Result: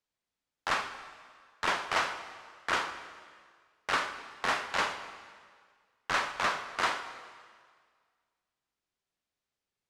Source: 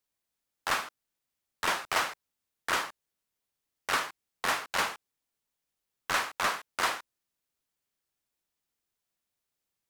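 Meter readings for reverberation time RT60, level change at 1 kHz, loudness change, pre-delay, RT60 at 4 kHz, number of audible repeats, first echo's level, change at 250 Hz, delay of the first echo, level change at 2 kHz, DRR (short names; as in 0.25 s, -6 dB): 1.8 s, 0.0 dB, -1.0 dB, 7 ms, 1.7 s, none, none, +0.5 dB, none, 0.0 dB, 9.0 dB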